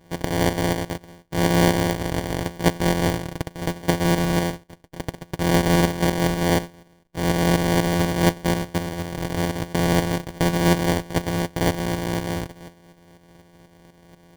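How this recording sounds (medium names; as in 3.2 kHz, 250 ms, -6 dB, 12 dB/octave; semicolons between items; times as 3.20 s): a buzz of ramps at a fixed pitch in blocks of 256 samples; tremolo saw up 4.1 Hz, depth 60%; aliases and images of a low sample rate 1.3 kHz, jitter 0%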